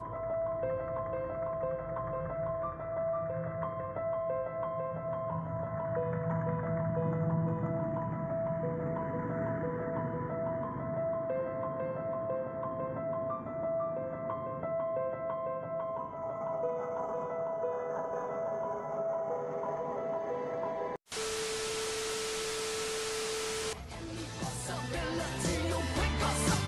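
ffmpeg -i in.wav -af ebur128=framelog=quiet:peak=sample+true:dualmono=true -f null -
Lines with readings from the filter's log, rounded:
Integrated loudness:
  I:         -32.1 LUFS
  Threshold: -42.1 LUFS
Loudness range:
  LRA:         2.2 LU
  Threshold: -52.2 LUFS
  LRA low:   -33.0 LUFS
  LRA high:  -30.8 LUFS
Sample peak:
  Peak:      -19.2 dBFS
True peak:
  Peak:      -19.2 dBFS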